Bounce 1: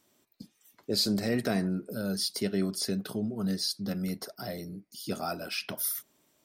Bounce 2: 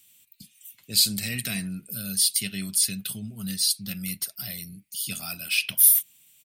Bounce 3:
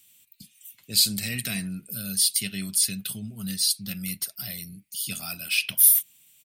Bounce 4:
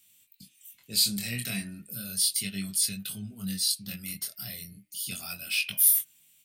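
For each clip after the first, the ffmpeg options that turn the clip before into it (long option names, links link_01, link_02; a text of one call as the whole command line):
ffmpeg -i in.wav -af "firequalizer=gain_entry='entry(140,0);entry(350,-19);entry(1500,-6);entry(2600,12);entry(5300,2);entry(8300,14)':delay=0.05:min_phase=1,volume=2dB" out.wav
ffmpeg -i in.wav -af anull out.wav
ffmpeg -i in.wav -af "aeval=exprs='0.891*(cos(1*acos(clip(val(0)/0.891,-1,1)))-cos(1*PI/2))+0.0355*(cos(5*acos(clip(val(0)/0.891,-1,1)))-cos(5*PI/2))':channel_layout=same,flanger=delay=19.5:depth=5.8:speed=0.34,bandreject=frequency=304.4:width_type=h:width=4,bandreject=frequency=608.8:width_type=h:width=4,bandreject=frequency=913.2:width_type=h:width=4,bandreject=frequency=1217.6:width_type=h:width=4,bandreject=frequency=1522:width_type=h:width=4,bandreject=frequency=1826.4:width_type=h:width=4,bandreject=frequency=2130.8:width_type=h:width=4,bandreject=frequency=2435.2:width_type=h:width=4,bandreject=frequency=2739.6:width_type=h:width=4,bandreject=frequency=3044:width_type=h:width=4,volume=-2dB" out.wav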